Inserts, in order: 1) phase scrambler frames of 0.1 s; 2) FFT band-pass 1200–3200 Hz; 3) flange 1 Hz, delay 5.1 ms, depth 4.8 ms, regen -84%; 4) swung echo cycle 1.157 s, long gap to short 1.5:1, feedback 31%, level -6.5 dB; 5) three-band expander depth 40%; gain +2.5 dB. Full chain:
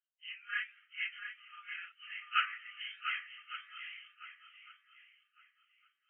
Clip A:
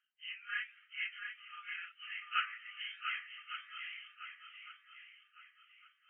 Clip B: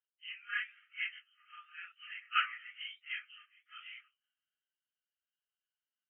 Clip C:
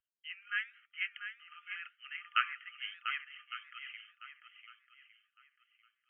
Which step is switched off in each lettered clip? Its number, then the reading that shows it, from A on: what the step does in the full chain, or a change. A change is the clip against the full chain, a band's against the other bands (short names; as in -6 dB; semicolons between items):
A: 5, crest factor change -2.0 dB; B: 4, momentary loudness spread change +2 LU; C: 1, crest factor change +2.5 dB